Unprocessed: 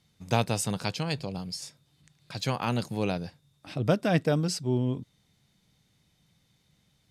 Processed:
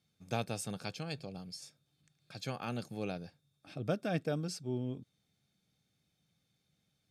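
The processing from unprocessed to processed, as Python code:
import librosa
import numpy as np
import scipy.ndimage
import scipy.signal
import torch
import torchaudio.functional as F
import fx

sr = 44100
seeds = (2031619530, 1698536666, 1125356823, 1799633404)

y = fx.notch_comb(x, sr, f0_hz=970.0)
y = y * librosa.db_to_amplitude(-9.0)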